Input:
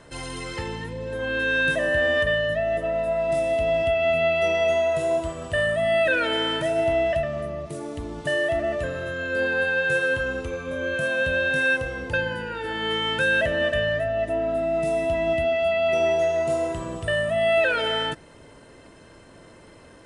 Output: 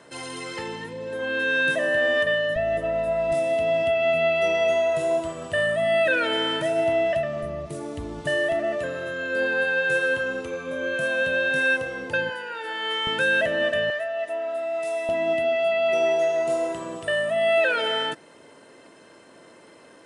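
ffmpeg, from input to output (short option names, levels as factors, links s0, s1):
-af "asetnsamples=n=441:p=0,asendcmd='2.56 highpass f 52;3.32 highpass f 140;7.43 highpass f 46;8.52 highpass f 180;12.3 highpass f 540;13.07 highpass f 190;13.9 highpass f 690;15.09 highpass f 240',highpass=200"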